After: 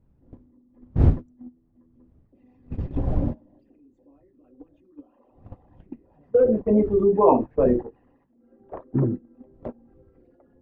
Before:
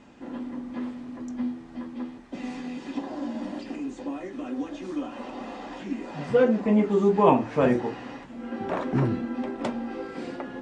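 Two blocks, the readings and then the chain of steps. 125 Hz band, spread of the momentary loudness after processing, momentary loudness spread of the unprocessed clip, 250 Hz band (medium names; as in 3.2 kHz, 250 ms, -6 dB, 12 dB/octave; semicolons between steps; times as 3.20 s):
+6.0 dB, 21 LU, 16 LU, -1.0 dB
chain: resonances exaggerated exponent 2; wind noise 120 Hz -32 dBFS; gate -25 dBFS, range -25 dB; trim +2 dB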